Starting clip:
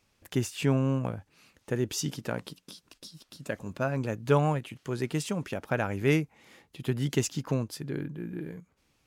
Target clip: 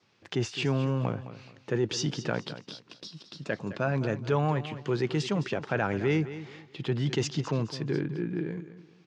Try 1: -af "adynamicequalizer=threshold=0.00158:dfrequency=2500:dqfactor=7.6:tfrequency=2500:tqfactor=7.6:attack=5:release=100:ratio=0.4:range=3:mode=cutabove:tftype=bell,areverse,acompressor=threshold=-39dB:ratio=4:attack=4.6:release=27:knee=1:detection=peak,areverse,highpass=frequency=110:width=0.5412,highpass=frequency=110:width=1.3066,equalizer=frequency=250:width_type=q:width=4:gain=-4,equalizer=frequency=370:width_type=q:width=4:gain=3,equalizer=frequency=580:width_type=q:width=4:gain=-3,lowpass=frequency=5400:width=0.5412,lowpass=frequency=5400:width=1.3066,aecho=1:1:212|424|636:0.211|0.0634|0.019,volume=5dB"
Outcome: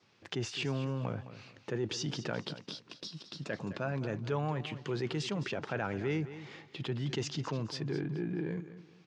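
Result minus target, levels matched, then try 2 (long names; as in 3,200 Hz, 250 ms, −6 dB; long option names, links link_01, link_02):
downward compressor: peak gain reduction +7 dB
-af "adynamicequalizer=threshold=0.00158:dfrequency=2500:dqfactor=7.6:tfrequency=2500:tqfactor=7.6:attack=5:release=100:ratio=0.4:range=3:mode=cutabove:tftype=bell,areverse,acompressor=threshold=-29.5dB:ratio=4:attack=4.6:release=27:knee=1:detection=peak,areverse,highpass=frequency=110:width=0.5412,highpass=frequency=110:width=1.3066,equalizer=frequency=250:width_type=q:width=4:gain=-4,equalizer=frequency=370:width_type=q:width=4:gain=3,equalizer=frequency=580:width_type=q:width=4:gain=-3,lowpass=frequency=5400:width=0.5412,lowpass=frequency=5400:width=1.3066,aecho=1:1:212|424|636:0.211|0.0634|0.019,volume=5dB"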